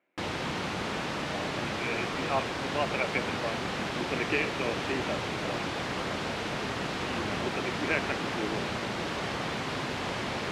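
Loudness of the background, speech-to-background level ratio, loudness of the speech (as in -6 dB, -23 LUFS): -32.5 LUFS, -2.5 dB, -35.0 LUFS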